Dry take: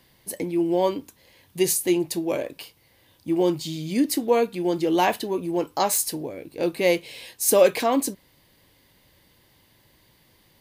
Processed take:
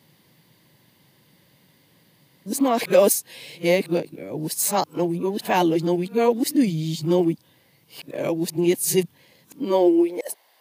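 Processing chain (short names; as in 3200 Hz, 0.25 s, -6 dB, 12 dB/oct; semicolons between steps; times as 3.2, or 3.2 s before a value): whole clip reversed; high-pass sweep 150 Hz -> 700 Hz, 9.46–10.33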